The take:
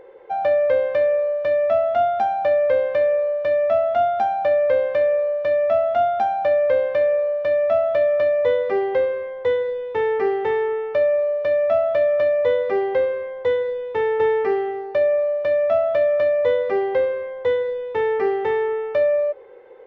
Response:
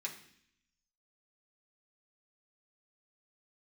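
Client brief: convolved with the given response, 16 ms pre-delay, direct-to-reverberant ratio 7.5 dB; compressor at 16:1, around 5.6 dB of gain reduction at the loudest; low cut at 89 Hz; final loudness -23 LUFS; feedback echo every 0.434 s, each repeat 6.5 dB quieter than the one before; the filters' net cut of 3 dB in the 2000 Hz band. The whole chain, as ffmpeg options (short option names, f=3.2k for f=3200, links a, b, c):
-filter_complex "[0:a]highpass=89,equalizer=f=2k:t=o:g=-3.5,acompressor=threshold=-20dB:ratio=16,aecho=1:1:434|868|1302|1736|2170|2604:0.473|0.222|0.105|0.0491|0.0231|0.0109,asplit=2[a][b];[1:a]atrim=start_sample=2205,adelay=16[c];[b][c]afir=irnorm=-1:irlink=0,volume=-7.5dB[d];[a][d]amix=inputs=2:normalize=0,volume=-1dB"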